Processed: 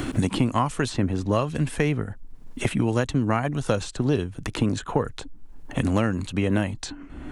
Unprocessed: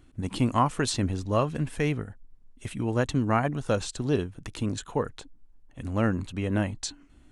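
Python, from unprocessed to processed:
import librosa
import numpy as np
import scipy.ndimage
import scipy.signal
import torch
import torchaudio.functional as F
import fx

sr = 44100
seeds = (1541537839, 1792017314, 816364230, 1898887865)

y = fx.band_squash(x, sr, depth_pct=100)
y = F.gain(torch.from_numpy(y), 2.5).numpy()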